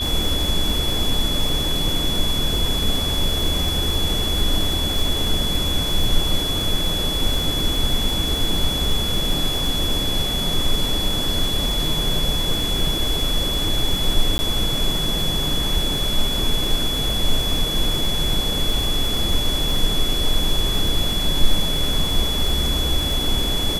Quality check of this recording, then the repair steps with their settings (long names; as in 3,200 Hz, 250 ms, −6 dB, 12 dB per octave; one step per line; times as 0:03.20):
surface crackle 56 per second −24 dBFS
whistle 3,400 Hz −23 dBFS
0:14.38–0:14.39: drop-out 10 ms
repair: click removal
notch filter 3,400 Hz, Q 30
repair the gap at 0:14.38, 10 ms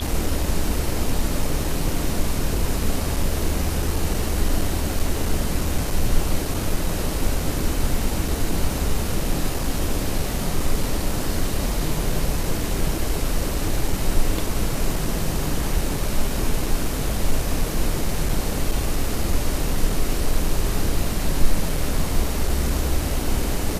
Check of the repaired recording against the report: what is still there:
none of them is left